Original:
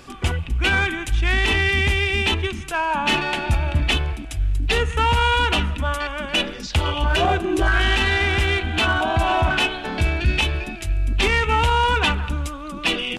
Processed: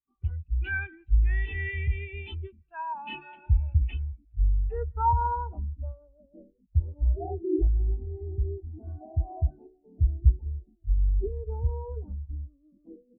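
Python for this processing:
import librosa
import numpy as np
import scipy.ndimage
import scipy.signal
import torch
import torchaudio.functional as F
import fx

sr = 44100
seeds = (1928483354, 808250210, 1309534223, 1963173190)

y = fx.air_absorb(x, sr, metres=98.0)
y = fx.filter_sweep_lowpass(y, sr, from_hz=7300.0, to_hz=520.0, start_s=2.48, end_s=6.17, q=1.1)
y = fx.spectral_expand(y, sr, expansion=2.5)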